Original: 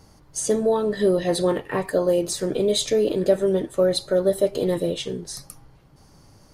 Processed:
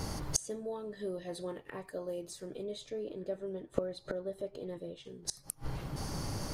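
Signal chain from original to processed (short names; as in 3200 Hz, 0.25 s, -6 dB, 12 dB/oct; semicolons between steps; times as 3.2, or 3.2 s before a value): 2.63–5.05 LPF 3000 Hz 6 dB/oct; flipped gate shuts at -25 dBFS, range -33 dB; gain +14 dB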